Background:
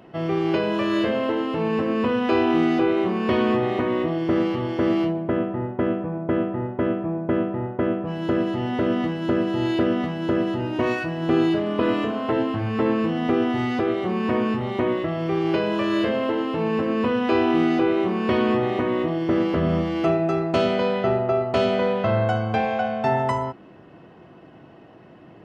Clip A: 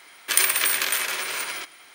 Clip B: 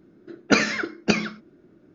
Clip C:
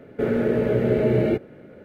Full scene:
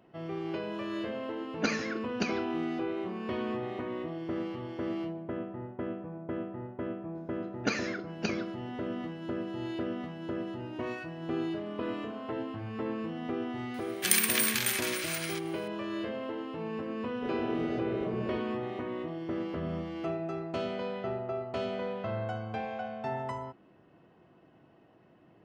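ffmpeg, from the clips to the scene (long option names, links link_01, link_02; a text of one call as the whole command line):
ffmpeg -i bed.wav -i cue0.wav -i cue1.wav -i cue2.wav -filter_complex "[2:a]asplit=2[link_01][link_02];[0:a]volume=-13.5dB[link_03];[link_02]acompressor=mode=upward:threshold=-30dB:ratio=2.5:attack=3.2:release=140:knee=2.83:detection=peak[link_04];[1:a]highpass=1400[link_05];[3:a]lowpass=1800[link_06];[link_01]atrim=end=1.94,asetpts=PTS-STARTPTS,volume=-12dB,afade=type=in:duration=0.004:curve=hsin,afade=type=out:start_time=1.936:duration=0.004:curve=hsin,adelay=1120[link_07];[link_04]atrim=end=1.94,asetpts=PTS-STARTPTS,volume=-12.5dB,afade=type=in:duration=0.004:curve=hsin,afade=type=out:start_time=1.936:duration=0.004:curve=hsin,adelay=7150[link_08];[link_05]atrim=end=1.94,asetpts=PTS-STARTPTS,volume=-5.5dB,afade=type=in:duration=0.004:curve=hsin,afade=type=out:start_time=1.936:duration=0.004:curve=hsin,adelay=13740[link_09];[link_06]atrim=end=1.84,asetpts=PTS-STARTPTS,volume=-16dB,afade=type=in:duration=0.004:curve=hsin,afade=type=out:start_time=1.836:duration=0.004:curve=hsin,adelay=17030[link_10];[link_03][link_07][link_08][link_09][link_10]amix=inputs=5:normalize=0" out.wav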